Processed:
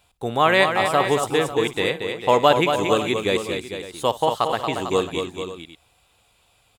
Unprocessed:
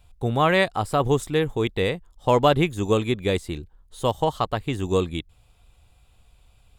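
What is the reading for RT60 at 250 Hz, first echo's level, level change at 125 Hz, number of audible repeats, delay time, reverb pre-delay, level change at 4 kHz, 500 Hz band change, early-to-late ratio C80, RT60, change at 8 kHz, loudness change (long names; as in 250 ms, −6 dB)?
no reverb audible, −17.5 dB, −6.0 dB, 4, 58 ms, no reverb audible, +5.5 dB, +2.5 dB, no reverb audible, no reverb audible, +5.5 dB, +2.5 dB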